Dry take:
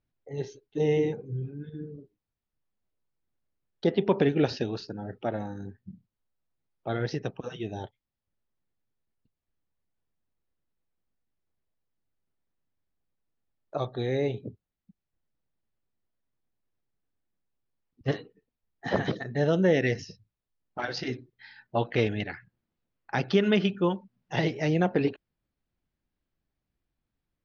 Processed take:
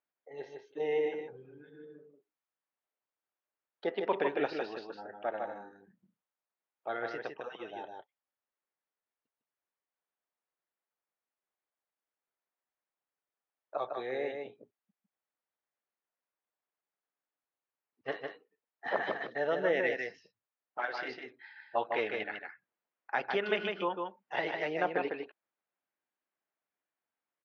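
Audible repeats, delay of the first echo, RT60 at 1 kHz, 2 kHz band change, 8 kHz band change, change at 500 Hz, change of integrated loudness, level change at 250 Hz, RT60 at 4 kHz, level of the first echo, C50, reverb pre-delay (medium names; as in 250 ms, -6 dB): 1, 154 ms, no reverb, -1.0 dB, no reading, -5.5 dB, -6.5 dB, -14.0 dB, no reverb, -4.5 dB, no reverb, no reverb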